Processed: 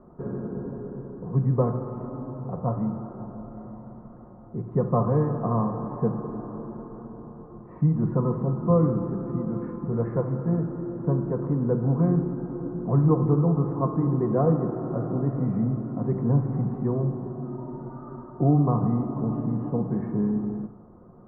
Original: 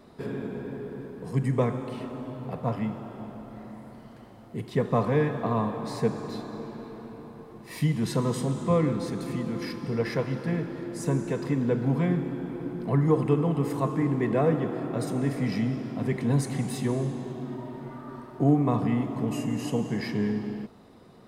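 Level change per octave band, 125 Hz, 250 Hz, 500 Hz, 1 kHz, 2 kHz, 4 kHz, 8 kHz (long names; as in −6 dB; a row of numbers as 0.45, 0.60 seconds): +4.0 dB, +1.5 dB, +0.5 dB, +0.5 dB, below −10 dB, below −40 dB, below −35 dB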